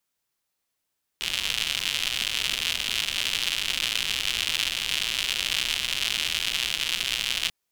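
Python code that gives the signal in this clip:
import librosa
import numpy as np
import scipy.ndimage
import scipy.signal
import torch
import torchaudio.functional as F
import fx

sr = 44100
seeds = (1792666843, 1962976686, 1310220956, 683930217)

y = fx.rain(sr, seeds[0], length_s=6.29, drops_per_s=150.0, hz=3000.0, bed_db=-16.0)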